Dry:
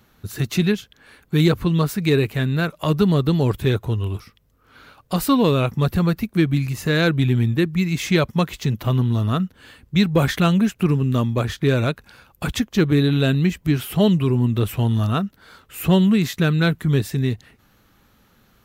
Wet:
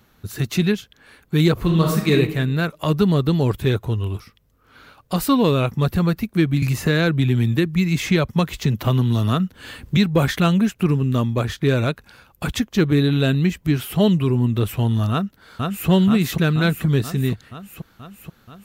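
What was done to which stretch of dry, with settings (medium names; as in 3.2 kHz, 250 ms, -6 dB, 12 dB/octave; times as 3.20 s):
1.53–2.12 s: reverb throw, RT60 0.85 s, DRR 0 dB
6.62–9.97 s: three bands compressed up and down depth 70%
15.11–15.89 s: echo throw 480 ms, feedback 70%, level -2.5 dB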